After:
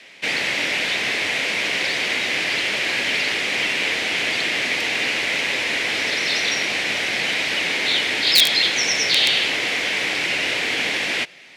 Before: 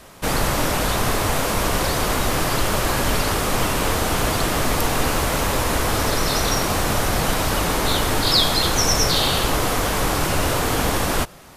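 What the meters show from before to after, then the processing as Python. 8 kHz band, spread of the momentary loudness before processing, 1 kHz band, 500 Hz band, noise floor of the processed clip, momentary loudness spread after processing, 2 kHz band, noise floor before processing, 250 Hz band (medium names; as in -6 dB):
-5.0 dB, 4 LU, -10.0 dB, -7.0 dB, -24 dBFS, 5 LU, +6.5 dB, -23 dBFS, -9.0 dB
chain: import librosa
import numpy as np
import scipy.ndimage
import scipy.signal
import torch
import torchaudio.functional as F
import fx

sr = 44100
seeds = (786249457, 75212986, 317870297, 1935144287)

y = fx.bandpass_edges(x, sr, low_hz=260.0, high_hz=4000.0)
y = (np.mod(10.0 ** (10.0 / 20.0) * y + 1.0, 2.0) - 1.0) / 10.0 ** (10.0 / 20.0)
y = fx.high_shelf_res(y, sr, hz=1600.0, db=10.0, q=3.0)
y = y * librosa.db_to_amplitude(-5.5)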